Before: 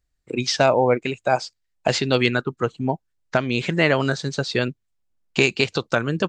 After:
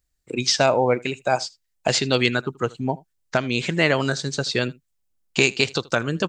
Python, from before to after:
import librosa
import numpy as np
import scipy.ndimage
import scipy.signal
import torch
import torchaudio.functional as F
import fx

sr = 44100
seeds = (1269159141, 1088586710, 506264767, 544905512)

p1 = fx.high_shelf(x, sr, hz=5500.0, db=11.0)
p2 = p1 + fx.echo_single(p1, sr, ms=79, db=-23.5, dry=0)
y = p2 * 10.0 ** (-1.5 / 20.0)